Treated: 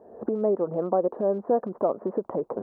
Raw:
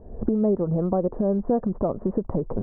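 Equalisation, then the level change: high-pass 420 Hz 12 dB/octave; +3.0 dB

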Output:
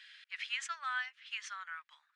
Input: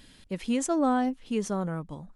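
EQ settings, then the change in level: steep high-pass 1.6 kHz 36 dB/octave; tape spacing loss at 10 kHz 35 dB; +13.5 dB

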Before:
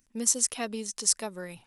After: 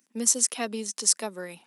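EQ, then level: steep high-pass 190 Hz; +2.5 dB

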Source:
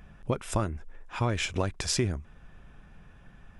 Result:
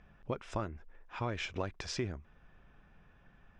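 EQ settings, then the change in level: resonant low-pass 5.9 kHz, resonance Q 1.8; tone controls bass -4 dB, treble -13 dB; -6.5 dB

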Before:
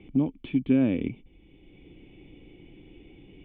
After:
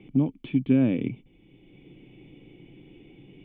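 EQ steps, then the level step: resonant low shelf 100 Hz -6 dB, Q 3; 0.0 dB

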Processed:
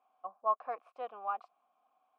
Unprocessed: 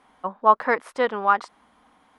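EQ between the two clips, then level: vowel filter a; -7.5 dB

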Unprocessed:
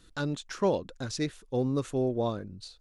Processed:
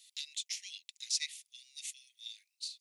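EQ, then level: steep high-pass 2 kHz 96 dB/octave; treble shelf 3.3 kHz +10 dB; -2.0 dB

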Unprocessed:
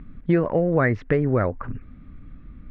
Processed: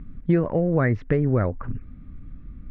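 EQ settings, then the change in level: bass shelf 300 Hz +7.5 dB; -4.5 dB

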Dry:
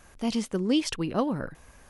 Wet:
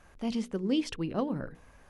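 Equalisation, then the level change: hum notches 60/120/180/240/300/360/420/480 Hz; dynamic bell 1.1 kHz, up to -4 dB, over -43 dBFS, Q 0.84; treble shelf 5 kHz -11.5 dB; -2.5 dB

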